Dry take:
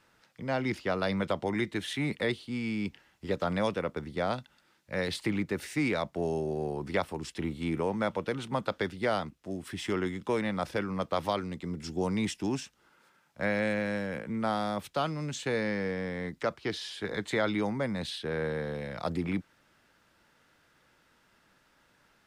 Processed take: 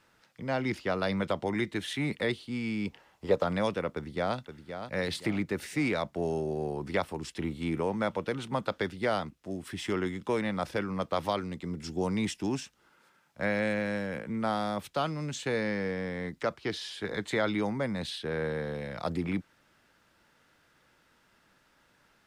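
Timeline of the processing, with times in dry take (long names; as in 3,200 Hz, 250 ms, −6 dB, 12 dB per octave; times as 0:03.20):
0:02.87–0:03.43: flat-topped bell 710 Hz +8 dB
0:03.93–0:04.37: delay throw 520 ms, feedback 40%, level −9 dB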